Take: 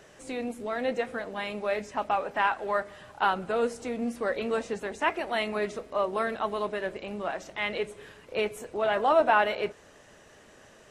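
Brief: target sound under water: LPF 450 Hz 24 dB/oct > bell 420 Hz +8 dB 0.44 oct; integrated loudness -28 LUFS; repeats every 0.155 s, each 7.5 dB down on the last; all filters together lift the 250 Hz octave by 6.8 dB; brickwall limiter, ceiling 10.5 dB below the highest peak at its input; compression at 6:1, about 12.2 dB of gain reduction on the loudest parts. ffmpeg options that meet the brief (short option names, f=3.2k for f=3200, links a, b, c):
-af "equalizer=f=250:t=o:g=7,acompressor=threshold=-30dB:ratio=6,alimiter=level_in=5dB:limit=-24dB:level=0:latency=1,volume=-5dB,lowpass=f=450:w=0.5412,lowpass=f=450:w=1.3066,equalizer=f=420:t=o:w=0.44:g=8,aecho=1:1:155|310|465|620|775:0.422|0.177|0.0744|0.0312|0.0131,volume=9.5dB"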